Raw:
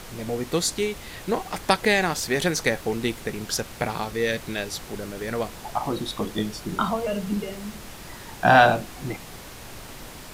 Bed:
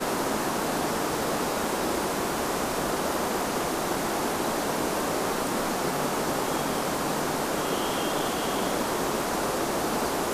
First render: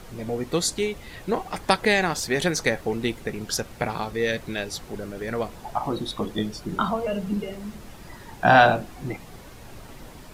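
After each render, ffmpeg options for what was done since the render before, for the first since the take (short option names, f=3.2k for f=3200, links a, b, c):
-af "afftdn=nr=8:nf=-41"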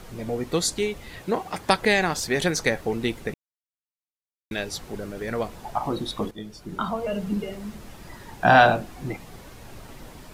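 -filter_complex "[0:a]asettb=1/sr,asplit=3[a][b][c];[a]atrim=end=1.214[d];[b]atrim=start=1.21:end=1.69,asetpts=PTS-STARTPTS,afade=t=in:d=0.004:c=qsin,afade=t=out:st=0.476:d=0.004:c=qsin,highpass=74[e];[c]atrim=start=1.686[f];[d][e]acrossfade=d=0.004:c1=hsin:c2=qsin[g];[g][f]acrossfade=d=0.004:c1=qsin:c2=hsin,asplit=4[h][i][j][k];[h]atrim=end=3.34,asetpts=PTS-STARTPTS,afade=t=out:st=3.336:d=0.004:c=hsin[l];[i]atrim=start=3.34:end=4.51,asetpts=PTS-STARTPTS,volume=0[m];[j]atrim=start=4.51:end=6.31,asetpts=PTS-STARTPTS,afade=t=in:d=0.004:c=hsin,afade=t=out:st=1.796:d=0.004:c=hsin:silence=0.211349[n];[k]atrim=start=6.31,asetpts=PTS-STARTPTS,afade=t=in:d=0.91:silence=0.211349[o];[l][m][n][o]concat=n=4:v=0:a=1"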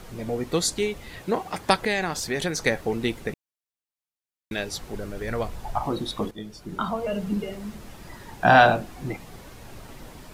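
-filter_complex "[0:a]asettb=1/sr,asplit=3[a][b][c];[a]atrim=end=1.794[d];[b]atrim=start=1.79:end=2.66,asetpts=PTS-STARTPTS,afade=t=in:d=0.004:c=qsin,afade=t=out:st=0.866:d=0.004:c=qsin,acompressor=threshold=-28dB:ratio=1.5:attack=3.2:release=140:knee=1:detection=peak[e];[c]atrim=start=2.656[f];[d][e]acrossfade=d=0.004:c1=hsin:c2=qsin[g];[g][f]acrossfade=d=0.004:c1=qsin:c2=hsin,asettb=1/sr,asplit=3[h][i][j];[h]atrim=end=4.674[k];[i]atrim=start=4.67:end=5.85,asetpts=PTS-STARTPTS,afade=t=in:d=0.004:c=qsin,afade=t=out:st=1.176:d=0.004:c=qsin,asubboost=boost=9.5:cutoff=110[l];[j]atrim=start=5.846[m];[k][l]acrossfade=d=0.004:c1=hsin:c2=qsin[n];[n][m]acrossfade=d=0.004:c1=qsin:c2=hsin"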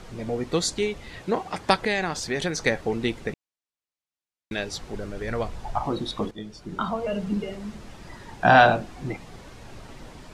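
-af "lowpass=7.7k"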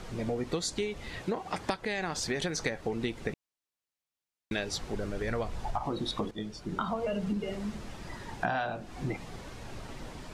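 -af "acompressor=threshold=-28dB:ratio=12"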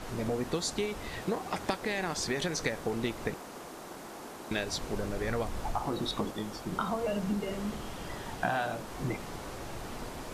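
-filter_complex "[1:a]volume=-17dB[a];[0:a][a]amix=inputs=2:normalize=0"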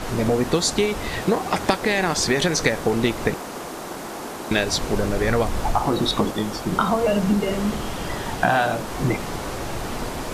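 -af "volume=12dB,alimiter=limit=-3dB:level=0:latency=1"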